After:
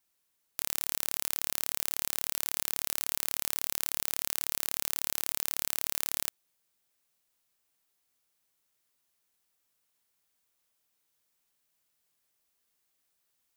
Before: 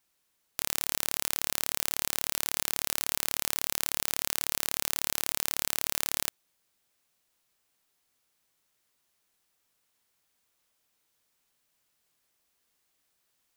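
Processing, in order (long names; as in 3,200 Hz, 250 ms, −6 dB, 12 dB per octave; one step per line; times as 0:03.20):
high-shelf EQ 8,400 Hz +5 dB
level −5 dB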